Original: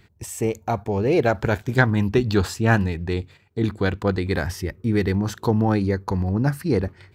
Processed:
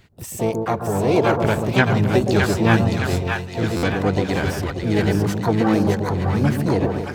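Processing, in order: two-band feedback delay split 680 Hz, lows 132 ms, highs 614 ms, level -4 dB; harmony voices +7 st -7 dB, +12 st -12 dB; buffer glitch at 3.76 s, samples 512, times 5

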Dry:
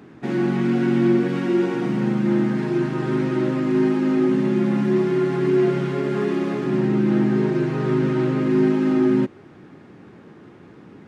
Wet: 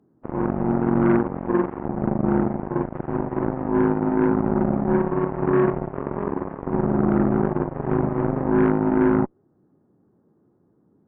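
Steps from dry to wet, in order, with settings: Gaussian low-pass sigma 8.1 samples; Chebyshev shaper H 2 -12 dB, 3 -36 dB, 4 -18 dB, 7 -16 dB, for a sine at -8.5 dBFS

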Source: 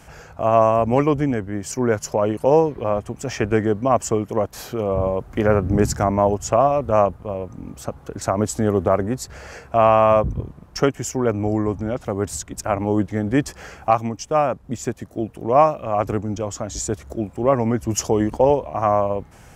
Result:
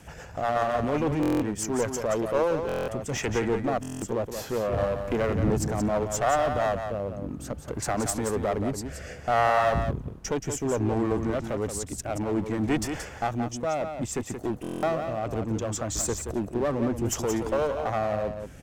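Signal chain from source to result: in parallel at +3 dB: peak limiter -15.5 dBFS, peak gain reduction 11.5 dB; on the sum: rotary cabinet horn 7.5 Hz, later 0.6 Hz, at 2.50 s; wide varispeed 1.05×; one-sided clip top -19 dBFS; on a send: delay 176 ms -7.5 dB; on the sum: buffer glitch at 1.21/2.67/3.81/14.62 s, samples 1024, times 8; trim -7 dB

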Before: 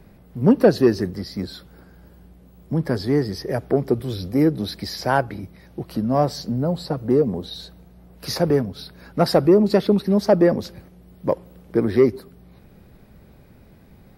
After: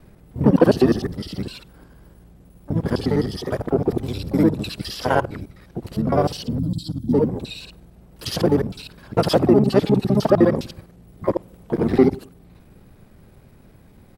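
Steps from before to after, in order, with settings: time reversed locally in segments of 51 ms; harmony voices -7 st -4 dB, +12 st -16 dB; time-frequency box 6.59–7.13 s, 340–3100 Hz -23 dB; trim -1 dB

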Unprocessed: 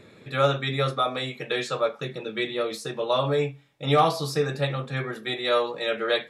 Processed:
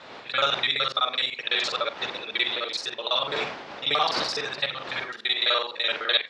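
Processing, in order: time reversed locally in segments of 42 ms; wind noise 610 Hz -33 dBFS; low-pass 4.8 kHz 24 dB/octave; in parallel at +3 dB: gain riding 2 s; on the sum: differentiator; trim +6.5 dB

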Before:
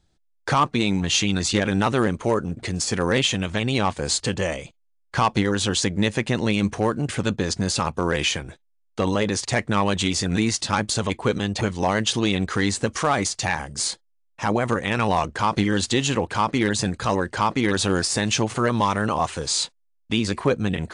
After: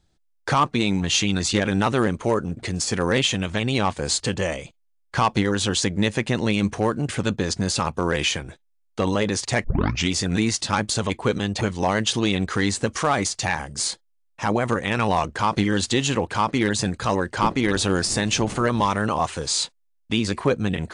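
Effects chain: 9.64 s: tape start 0.44 s; 17.42–18.92 s: wind noise 300 Hz -26 dBFS

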